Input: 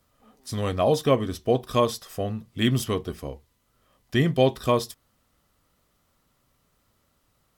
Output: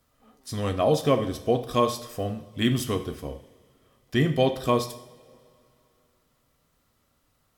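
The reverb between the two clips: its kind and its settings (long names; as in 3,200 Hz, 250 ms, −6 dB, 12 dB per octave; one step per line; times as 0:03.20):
coupled-rooms reverb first 0.6 s, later 2.7 s, from −19 dB, DRR 8 dB
level −1.5 dB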